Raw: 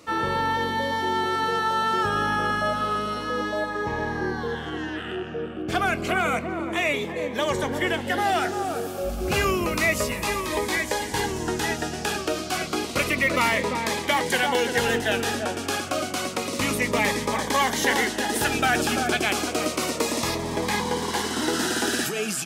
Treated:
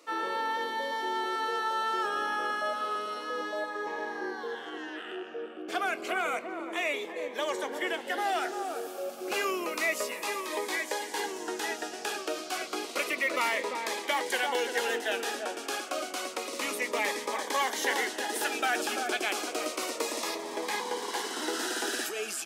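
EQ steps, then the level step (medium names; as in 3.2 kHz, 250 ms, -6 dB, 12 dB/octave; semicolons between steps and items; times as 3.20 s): high-pass 320 Hz 24 dB/octave; -6.5 dB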